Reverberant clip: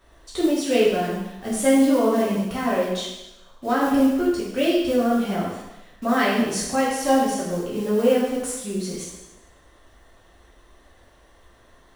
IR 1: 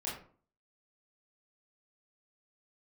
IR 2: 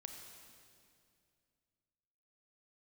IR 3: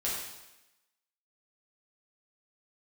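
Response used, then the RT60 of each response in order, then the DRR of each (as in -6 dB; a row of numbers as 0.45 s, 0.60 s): 3; 0.45 s, 2.4 s, 0.95 s; -7.0 dB, 3.5 dB, -7.0 dB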